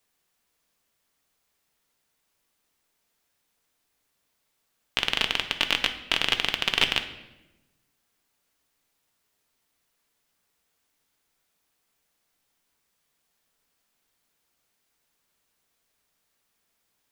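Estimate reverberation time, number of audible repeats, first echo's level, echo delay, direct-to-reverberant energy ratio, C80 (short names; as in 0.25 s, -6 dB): 1.0 s, none, none, none, 6.5 dB, 13.5 dB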